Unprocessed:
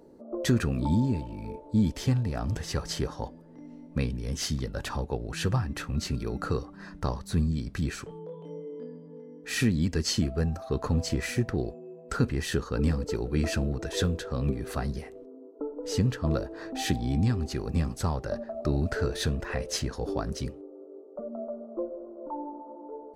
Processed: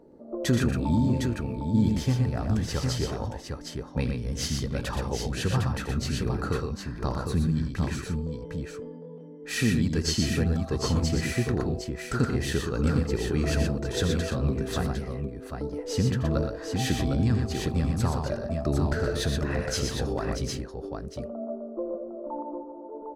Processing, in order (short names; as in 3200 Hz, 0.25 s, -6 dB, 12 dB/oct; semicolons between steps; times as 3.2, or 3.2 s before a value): tapped delay 83/121/757 ms -10.5/-5/-5 dB; mismatched tape noise reduction decoder only